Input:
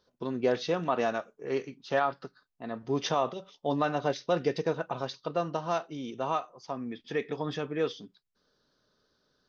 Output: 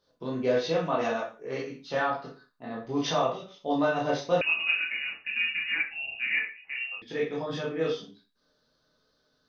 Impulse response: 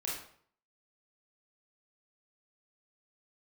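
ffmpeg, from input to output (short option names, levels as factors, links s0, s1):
-filter_complex "[1:a]atrim=start_sample=2205,afade=t=out:st=0.43:d=0.01,atrim=end_sample=19404,asetrate=70560,aresample=44100[s0];[0:a][s0]afir=irnorm=-1:irlink=0,asettb=1/sr,asplit=3[s1][s2][s3];[s1]atrim=end=4.414[s4];[s2]atrim=start=4.41:end=7.02,asetpts=PTS-STARTPTS,afade=t=in:d=0.004:c=qsin,afade=t=out:st=2.606:d=0.004:c=qsin,lowpass=f=2600:t=q:w=0.5098,lowpass=f=2600:t=q:w=0.6013,lowpass=f=2600:t=q:w=0.9,lowpass=f=2600:t=q:w=2.563,afreqshift=-3000[s5];[s3]atrim=start=7.016[s6];[s4][s5]acrossfade=d=0.004:c1=hsin:c2=qsin[s7];[s7][s6]acrossfade=d=0.004:c1=qsin:c2=hsin,volume=1.5"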